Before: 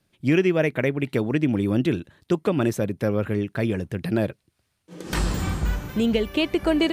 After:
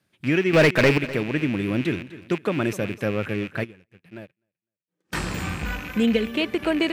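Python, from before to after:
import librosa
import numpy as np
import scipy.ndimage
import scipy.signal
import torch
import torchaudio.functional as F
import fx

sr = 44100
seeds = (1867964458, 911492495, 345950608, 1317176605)

y = fx.rattle_buzz(x, sr, strikes_db=-34.0, level_db=-24.0)
y = scipy.signal.sosfilt(scipy.signal.butter(2, 79.0, 'highpass', fs=sr, output='sos'), y)
y = fx.peak_eq(y, sr, hz=1700.0, db=5.0, octaves=1.1)
y = fx.leveller(y, sr, passes=3, at=(0.53, 0.98))
y = fx.comb(y, sr, ms=4.0, depth=0.69, at=(5.62, 6.27))
y = fx.echo_feedback(y, sr, ms=252, feedback_pct=28, wet_db=-16.5)
y = fx.upward_expand(y, sr, threshold_db=-38.0, expansion=2.5, at=(3.63, 5.12), fade=0.02)
y = y * librosa.db_to_amplitude(-2.5)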